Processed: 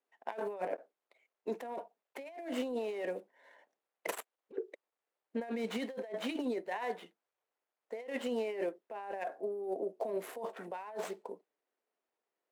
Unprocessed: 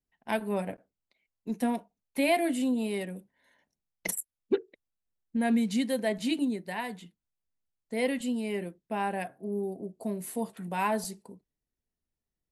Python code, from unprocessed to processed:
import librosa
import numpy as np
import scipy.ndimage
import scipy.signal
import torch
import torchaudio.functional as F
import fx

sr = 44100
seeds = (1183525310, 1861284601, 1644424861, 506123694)

y = scipy.signal.medfilt(x, 9)
y = scipy.signal.sosfilt(scipy.signal.butter(4, 450.0, 'highpass', fs=sr, output='sos'), y)
y = fx.tilt_eq(y, sr, slope=-3.0)
y = fx.over_compress(y, sr, threshold_db=-41.0, ratio=-1.0)
y = F.gain(torch.from_numpy(y), 2.0).numpy()